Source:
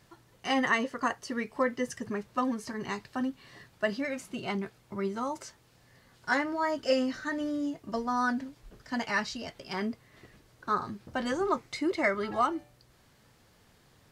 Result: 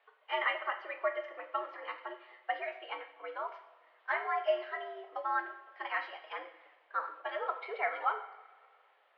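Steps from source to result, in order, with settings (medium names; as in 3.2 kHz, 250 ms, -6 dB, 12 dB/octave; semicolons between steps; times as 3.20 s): time stretch by phase-locked vocoder 0.65×; mistuned SSB +100 Hz 440–3100 Hz; two-slope reverb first 0.66 s, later 2.4 s, DRR 5 dB; trim -3.5 dB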